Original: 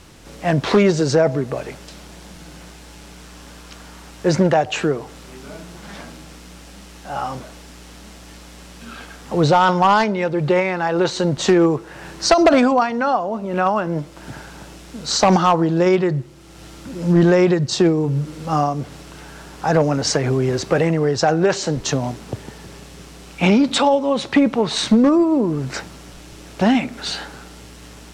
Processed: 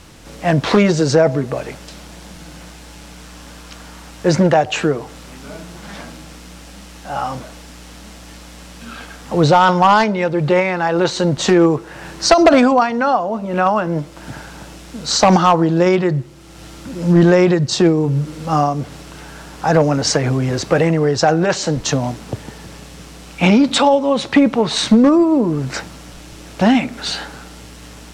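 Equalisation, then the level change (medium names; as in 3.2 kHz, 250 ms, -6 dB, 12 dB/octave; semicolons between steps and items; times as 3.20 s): band-stop 390 Hz, Q 12; +3.0 dB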